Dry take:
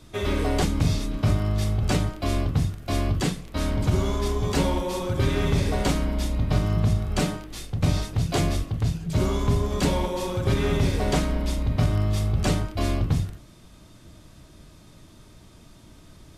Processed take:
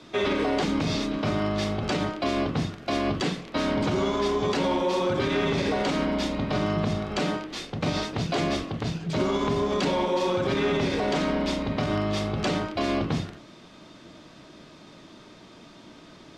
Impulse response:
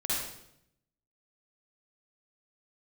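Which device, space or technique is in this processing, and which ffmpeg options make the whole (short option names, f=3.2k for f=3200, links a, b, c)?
DJ mixer with the lows and highs turned down: -filter_complex "[0:a]acrossover=split=180 5800:gain=0.0794 1 0.0631[a][b][c];[a][b][c]amix=inputs=3:normalize=0,alimiter=limit=-23dB:level=0:latency=1:release=64,volume=6.5dB"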